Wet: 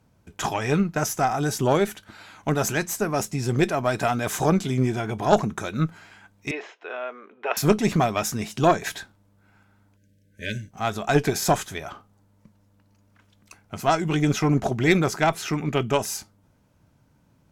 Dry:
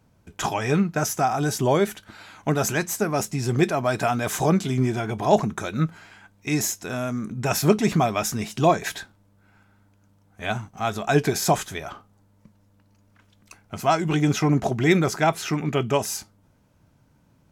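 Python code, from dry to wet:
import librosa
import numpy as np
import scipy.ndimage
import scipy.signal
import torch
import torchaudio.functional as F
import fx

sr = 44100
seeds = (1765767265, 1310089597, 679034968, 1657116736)

y = fx.cheby_harmonics(x, sr, harmonics=(2,), levels_db=(-9,), full_scale_db=-4.5)
y = fx.ellip_bandpass(y, sr, low_hz=420.0, high_hz=3000.0, order=3, stop_db=60, at=(6.51, 7.57))
y = fx.spec_erase(y, sr, start_s=9.97, length_s=0.74, low_hz=610.0, high_hz=1500.0)
y = y * 10.0 ** (-1.0 / 20.0)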